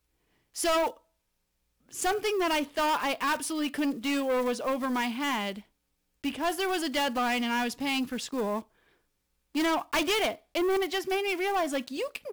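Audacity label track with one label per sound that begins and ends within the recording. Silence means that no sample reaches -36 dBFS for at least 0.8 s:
1.940000	8.610000	sound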